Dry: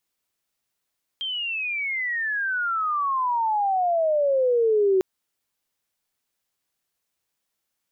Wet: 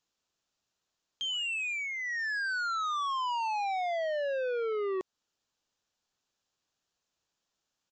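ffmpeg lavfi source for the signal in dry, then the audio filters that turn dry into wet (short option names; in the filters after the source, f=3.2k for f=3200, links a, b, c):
-f lavfi -i "aevalsrc='pow(10,(-26+10*t/3.8)/20)*sin(2*PI*3200*3.8/log(370/3200)*(exp(log(370/3200)*t/3.8)-1))':d=3.8:s=44100"
-af "equalizer=f=2.1k:t=o:w=0.33:g=-8,alimiter=limit=-20dB:level=0:latency=1:release=203,aresample=16000,asoftclip=type=tanh:threshold=-30.5dB,aresample=44100"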